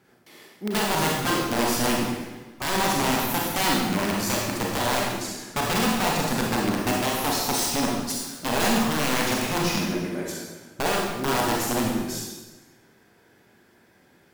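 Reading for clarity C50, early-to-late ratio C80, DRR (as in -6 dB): 0.0 dB, 2.5 dB, -3.0 dB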